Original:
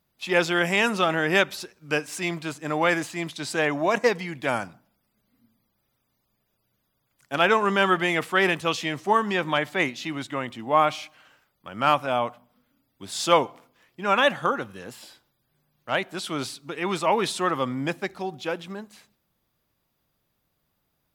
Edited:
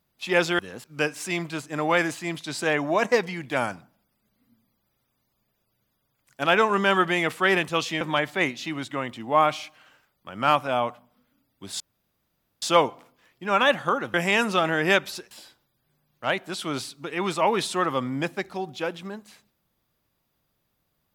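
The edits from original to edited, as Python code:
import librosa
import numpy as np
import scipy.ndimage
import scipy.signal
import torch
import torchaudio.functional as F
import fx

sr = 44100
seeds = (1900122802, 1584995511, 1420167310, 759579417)

y = fx.edit(x, sr, fx.swap(start_s=0.59, length_s=1.17, other_s=14.71, other_length_s=0.25),
    fx.cut(start_s=8.93, length_s=0.47),
    fx.insert_room_tone(at_s=13.19, length_s=0.82), tone=tone)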